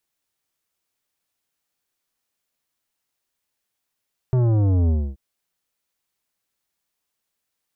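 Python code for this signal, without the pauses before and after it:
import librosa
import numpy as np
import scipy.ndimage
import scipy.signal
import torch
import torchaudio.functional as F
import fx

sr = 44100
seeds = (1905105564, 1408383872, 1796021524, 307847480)

y = fx.sub_drop(sr, level_db=-16.5, start_hz=130.0, length_s=0.83, drive_db=12.0, fade_s=0.27, end_hz=65.0)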